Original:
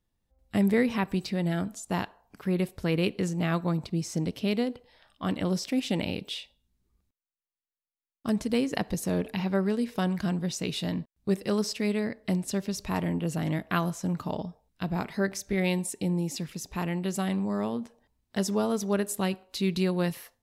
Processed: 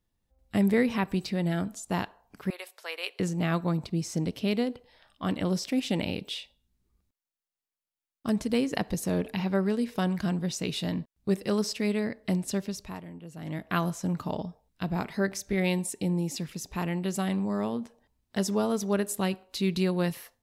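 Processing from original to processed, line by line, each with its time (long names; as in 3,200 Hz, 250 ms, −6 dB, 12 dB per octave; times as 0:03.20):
0:02.50–0:03.20: Bessel high-pass filter 890 Hz, order 6
0:12.56–0:13.80: duck −14.5 dB, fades 0.46 s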